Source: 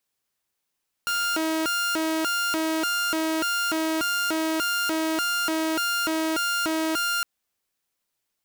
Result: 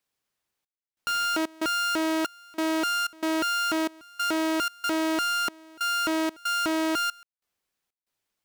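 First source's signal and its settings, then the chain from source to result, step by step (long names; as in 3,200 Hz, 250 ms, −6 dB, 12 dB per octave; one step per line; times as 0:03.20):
siren hi-lo 319–1,400 Hz 1.7 per second saw −20.5 dBFS 6.16 s
high-shelf EQ 5,700 Hz −6 dB
gate pattern "xxxx..xxx." 93 BPM −24 dB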